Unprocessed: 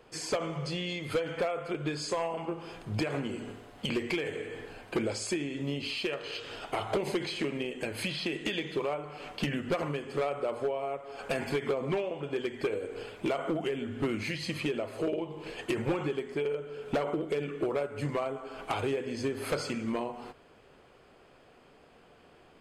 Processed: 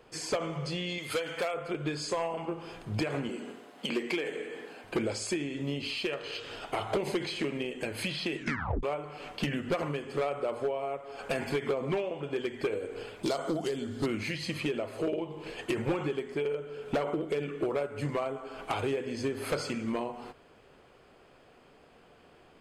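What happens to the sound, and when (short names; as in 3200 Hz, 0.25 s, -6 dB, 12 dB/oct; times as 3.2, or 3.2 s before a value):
0.98–1.54 tilt +2.5 dB/oct
3.29–4.84 HPF 190 Hz 24 dB/oct
8.37 tape stop 0.46 s
13.23–14.06 resonant high shelf 3400 Hz +8.5 dB, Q 3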